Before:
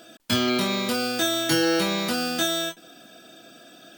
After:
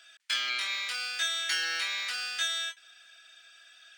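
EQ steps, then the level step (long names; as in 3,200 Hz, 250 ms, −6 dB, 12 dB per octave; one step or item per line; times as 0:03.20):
Savitzky-Golay smoothing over 9 samples
high-pass with resonance 1,900 Hz, resonance Q 2.1
−6.0 dB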